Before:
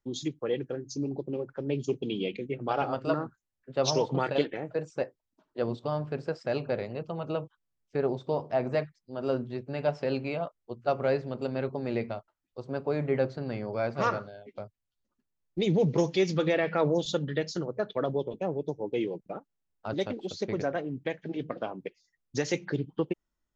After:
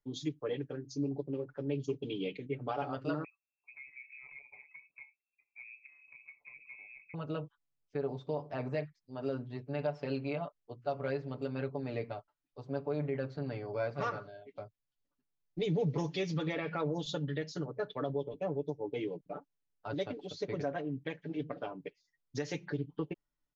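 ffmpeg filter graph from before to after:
-filter_complex "[0:a]asettb=1/sr,asplit=3[a][b][c];[a]atrim=end=3.244[d];[b]atrim=start=3.24:end=7.14,asetpts=PTS-STARTPTS,afade=t=in:d=0.004:c=qsin,afade=t=out:st=3.896:d=0.004:c=qsin,asuperstop=centerf=1100:order=4:qfactor=0.69,acompressor=threshold=-46dB:ratio=4:attack=3.2:release=140:knee=1:detection=peak,lowpass=f=2.3k:t=q:w=0.5098,lowpass=f=2.3k:t=q:w=0.6013,lowpass=f=2.3k:t=q:w=0.9,lowpass=f=2.3k:t=q:w=2.563,afreqshift=-2700[e];[c]atrim=start=7.136[f];[d][e]acrossfade=d=0.004:c1=hsin:c2=qsin[g];[g][f]acrossfade=d=0.004:c1=qsin:c2=hsin,lowpass=6k,aecho=1:1:6.9:0.82,alimiter=limit=-17dB:level=0:latency=1:release=172,volume=-7dB"

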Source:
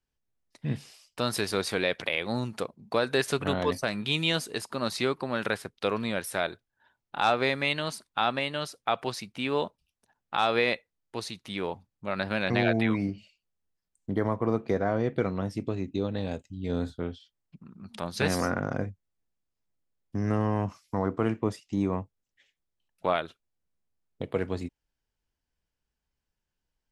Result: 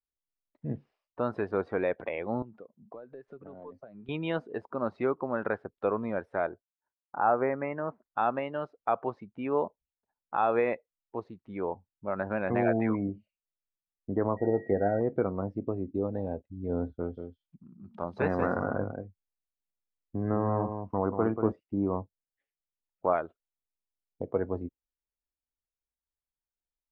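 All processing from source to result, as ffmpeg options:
-filter_complex "[0:a]asettb=1/sr,asplit=3[a][b][c];[a]atrim=end=2.424[d];[b]atrim=start=2.42:end=4.09,asetpts=PTS-STARTPTS,afade=t=in:d=0.004:c=qsin,afade=t=out:st=1.666:d=0.004:c=qsin,highpass=f=100:w=0.5412,highpass=f=100:w=1.3066,acompressor=threshold=-42dB:ratio=4:attack=3.2:release=140:knee=1:detection=peak,aeval=exprs='(tanh(22.4*val(0)+0.35)-tanh(0.35))/22.4':c=same[e];[c]atrim=start=4.086[f];[d][e]acrossfade=d=0.004:c1=hsin:c2=qsin[g];[g][f]acrossfade=d=0.004:c1=qsin:c2=hsin,asettb=1/sr,asplit=3[h][i][j];[h]atrim=end=6.494[k];[i]atrim=start=6.49:end=8.04,asetpts=PTS-STARTPTS,afade=t=in:d=0.004:c=qsin,afade=t=out:st=1.546:d=0.004:c=qsin,agate=range=-33dB:threshold=-59dB:ratio=3:release=100:detection=peak,lowpass=f=2.1k:w=0.5412,lowpass=f=2.1k:w=1.3066[l];[j]atrim=start=8.036[m];[k][l]acrossfade=d=0.004:c1=hsin:c2=qsin[n];[n][m]acrossfade=d=0.004:c1=qsin:c2=hsin,asettb=1/sr,asplit=3[o][p][q];[o]atrim=end=14.374[r];[p]atrim=start=14.37:end=15.01,asetpts=PTS-STARTPTS,afade=t=in:d=0.004:c=qsin,afade=t=out:st=0.636:d=0.004:c=qsin,asplit=2[s][t];[t]adelay=20,volume=-10dB[u];[s][u]amix=inputs=2:normalize=0,atrim=end_sample=28224,aeval=exprs='val(0)+0.00708*sin(2*PI*1900*n/s)':c=same,asuperstop=centerf=1100:order=8:qfactor=2.2[v];[q]atrim=start=15.006[w];[r][v]acrossfade=d=0.004:c1=hsin:c2=qsin[x];[x][w]acrossfade=d=0.004:c1=qsin:c2=hsin,asettb=1/sr,asplit=3[y][z][aa];[y]atrim=end=16.944[ab];[z]atrim=start=16.94:end=21.52,asetpts=PTS-STARTPTS,afade=t=in:d=0.004:c=qsin,afade=t=out:st=4.576:d=0.004:c=qsin,highshelf=f=5.1k:g=11.5,aecho=1:1:186:0.447,atrim=end_sample=201978[ac];[aa]atrim=start=21.516[ad];[ab][ac]acrossfade=d=0.004:c1=hsin:c2=qsin[ae];[ae][ad]acrossfade=d=0.004:c1=qsin:c2=hsin,lowpass=1.2k,afftdn=nr=15:nf=-44,equalizer=f=140:w=0.94:g=-7,volume=1.5dB"

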